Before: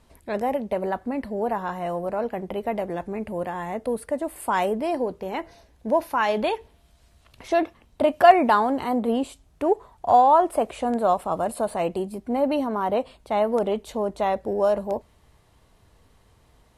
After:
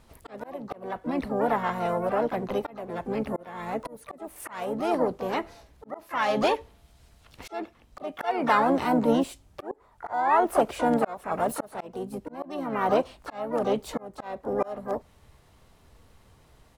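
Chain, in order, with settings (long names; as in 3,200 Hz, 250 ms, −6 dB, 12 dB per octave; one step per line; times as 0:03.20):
pitch-shifted copies added −7 semitones −13 dB, +4 semitones −7 dB, +12 semitones −12 dB
volume swells 486 ms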